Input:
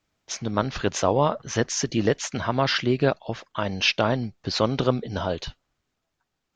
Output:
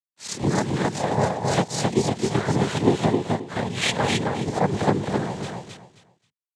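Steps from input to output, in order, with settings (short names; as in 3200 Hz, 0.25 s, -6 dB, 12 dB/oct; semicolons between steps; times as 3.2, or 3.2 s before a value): spectral swells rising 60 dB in 0.32 s; 3.96–4.77 LPF 1200 Hz 6 dB/oct; harmonic-percussive split percussive -13 dB; in parallel at +1 dB: compressor, threshold -33 dBFS, peak gain reduction 14.5 dB; on the sum: transient shaper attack +11 dB, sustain -6 dB; rotary speaker horn 1.2 Hz; bit-crush 7-bit; noise vocoder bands 6; on a send: feedback echo 0.265 s, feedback 23%, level -3.5 dB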